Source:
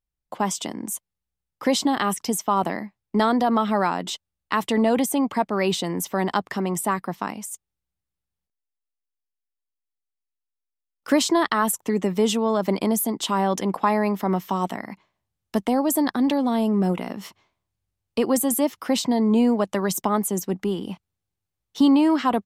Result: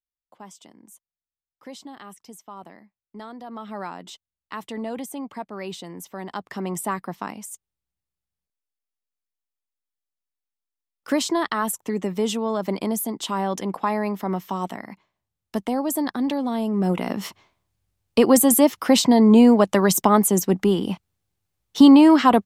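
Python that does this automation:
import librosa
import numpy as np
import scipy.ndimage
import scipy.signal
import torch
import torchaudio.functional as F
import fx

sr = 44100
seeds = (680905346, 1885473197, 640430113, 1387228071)

y = fx.gain(x, sr, db=fx.line((3.39, -19.0), (3.81, -11.0), (6.25, -11.0), (6.67, -3.0), (16.71, -3.0), (17.14, 6.0)))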